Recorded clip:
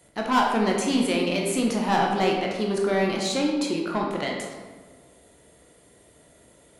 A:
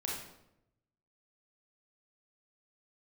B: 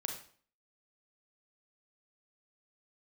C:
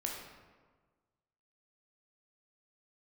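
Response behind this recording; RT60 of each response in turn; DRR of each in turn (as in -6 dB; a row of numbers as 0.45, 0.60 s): C; 0.85, 0.50, 1.5 s; -4.0, 2.5, -1.0 dB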